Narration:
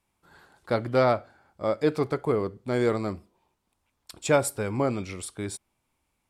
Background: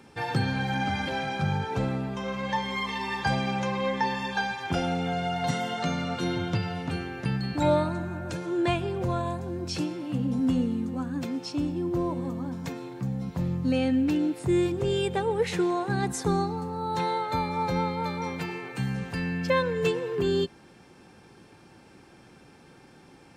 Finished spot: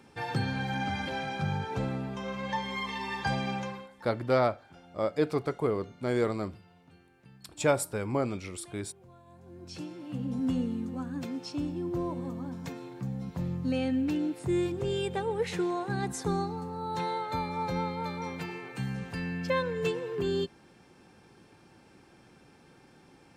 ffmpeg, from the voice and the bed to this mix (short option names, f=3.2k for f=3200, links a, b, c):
-filter_complex "[0:a]adelay=3350,volume=-3.5dB[a];[1:a]volume=18.5dB,afade=t=out:st=3.53:d=0.35:silence=0.0707946,afade=t=in:st=9.26:d=1.21:silence=0.0749894[b];[a][b]amix=inputs=2:normalize=0"